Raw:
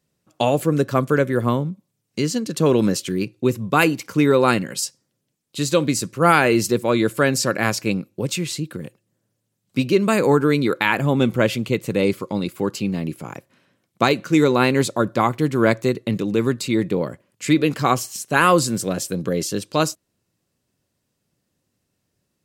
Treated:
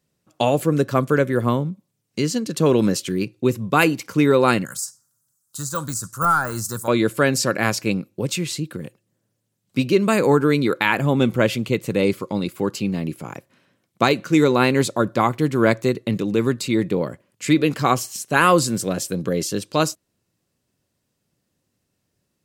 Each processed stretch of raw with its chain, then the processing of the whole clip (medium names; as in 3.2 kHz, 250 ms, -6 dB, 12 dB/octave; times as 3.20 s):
4.65–6.88 s: de-esser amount 80% + FFT filter 100 Hz 0 dB, 400 Hz -17 dB, 1.4 kHz +8 dB, 2.3 kHz -19 dB, 7.1 kHz +13 dB
whole clip: none